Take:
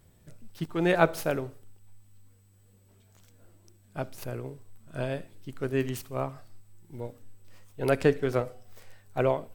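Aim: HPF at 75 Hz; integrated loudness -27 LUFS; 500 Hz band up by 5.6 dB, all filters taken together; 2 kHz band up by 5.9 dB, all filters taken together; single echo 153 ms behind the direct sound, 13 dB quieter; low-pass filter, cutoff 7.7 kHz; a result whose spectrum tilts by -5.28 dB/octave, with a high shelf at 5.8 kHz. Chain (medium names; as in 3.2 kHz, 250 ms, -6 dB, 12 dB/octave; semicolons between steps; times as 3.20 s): high-pass 75 Hz; low-pass 7.7 kHz; peaking EQ 500 Hz +6.5 dB; peaking EQ 2 kHz +8 dB; treble shelf 5.8 kHz -3.5 dB; delay 153 ms -13 dB; trim -1.5 dB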